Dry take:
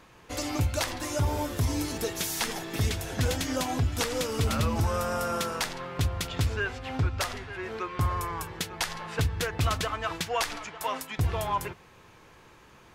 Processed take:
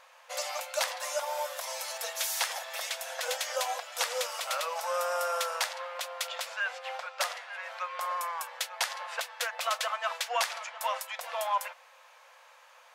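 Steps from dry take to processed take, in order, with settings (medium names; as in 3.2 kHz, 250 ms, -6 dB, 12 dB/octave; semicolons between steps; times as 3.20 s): brick-wall FIR high-pass 490 Hz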